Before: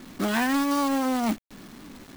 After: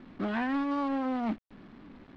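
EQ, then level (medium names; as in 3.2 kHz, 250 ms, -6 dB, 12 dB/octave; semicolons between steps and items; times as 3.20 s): brick-wall FIR low-pass 8.9 kHz; distance through air 370 m; -5.0 dB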